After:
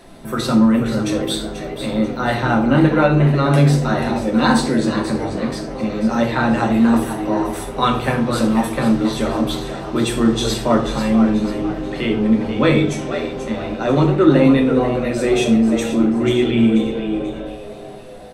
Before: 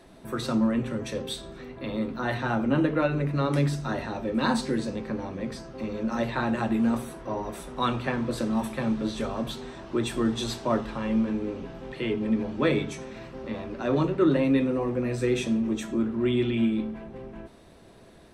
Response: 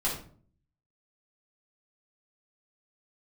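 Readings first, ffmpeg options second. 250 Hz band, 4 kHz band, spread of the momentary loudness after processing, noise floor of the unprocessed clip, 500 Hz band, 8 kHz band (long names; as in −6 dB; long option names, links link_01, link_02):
+10.5 dB, +10.5 dB, 10 LU, −51 dBFS, +10.0 dB, +11.5 dB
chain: -filter_complex "[0:a]asplit=5[link_01][link_02][link_03][link_04][link_05];[link_02]adelay=487,afreqshift=94,volume=-9.5dB[link_06];[link_03]adelay=974,afreqshift=188,volume=-17.5dB[link_07];[link_04]adelay=1461,afreqshift=282,volume=-25.4dB[link_08];[link_05]adelay=1948,afreqshift=376,volume=-33.4dB[link_09];[link_01][link_06][link_07][link_08][link_09]amix=inputs=5:normalize=0,asplit=2[link_10][link_11];[1:a]atrim=start_sample=2205,highshelf=frequency=5700:gain=8[link_12];[link_11][link_12]afir=irnorm=-1:irlink=0,volume=-9.5dB[link_13];[link_10][link_13]amix=inputs=2:normalize=0,volume=6dB"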